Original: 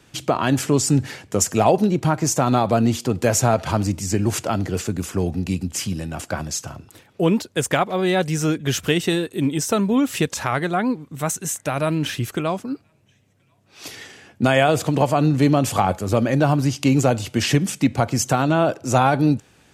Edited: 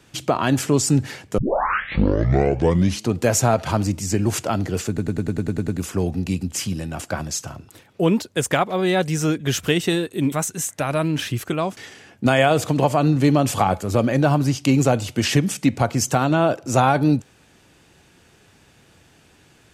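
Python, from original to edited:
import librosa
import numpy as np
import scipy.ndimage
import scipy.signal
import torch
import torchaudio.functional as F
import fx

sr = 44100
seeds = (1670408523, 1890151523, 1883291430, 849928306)

y = fx.edit(x, sr, fx.tape_start(start_s=1.38, length_s=1.81),
    fx.stutter(start_s=4.88, slice_s=0.1, count=9),
    fx.cut(start_s=9.52, length_s=1.67),
    fx.cut(start_s=12.64, length_s=1.31), tone=tone)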